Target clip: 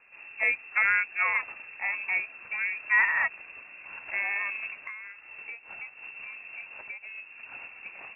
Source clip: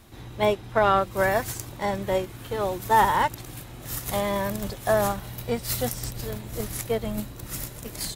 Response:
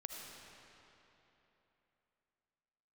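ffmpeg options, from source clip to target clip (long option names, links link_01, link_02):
-filter_complex "[0:a]highpass=frequency=87:poles=1,lowpass=frequency=2400:width_type=q:width=0.5098,lowpass=frequency=2400:width_type=q:width=0.6013,lowpass=frequency=2400:width_type=q:width=0.9,lowpass=frequency=2400:width_type=q:width=2.563,afreqshift=-2800,asettb=1/sr,asplit=3[link_01][link_02][link_03];[link_01]atrim=end=4.834[link_04];[link_02]atrim=start=4.83:end=7.47,asetpts=PTS-STARTPTS,afade=type=in:duration=0.004:curve=qsin,afade=type=out:start_time=2.636:duration=0.004:curve=qsin,acompressor=threshold=-34dB:ratio=16[link_05];[link_03]atrim=start=7.466[link_06];[link_04][link_05]acrossfade=duration=0.004:curve1=hsin:curve2=qsin[link_07];[link_07][link_06]acrossfade=duration=0.004:curve1=qsin:curve2=hsin,volume=-4dB"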